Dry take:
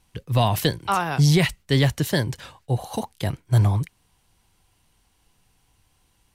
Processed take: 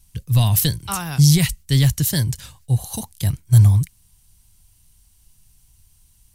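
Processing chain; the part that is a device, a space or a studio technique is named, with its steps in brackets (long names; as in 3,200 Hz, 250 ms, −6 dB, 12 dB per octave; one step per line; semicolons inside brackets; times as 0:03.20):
bass and treble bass +8 dB, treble +10 dB
smiley-face EQ (low-shelf EQ 99 Hz +8 dB; parametric band 490 Hz −6.5 dB 2.4 octaves; high-shelf EQ 7,600 Hz +8.5 dB)
level −3.5 dB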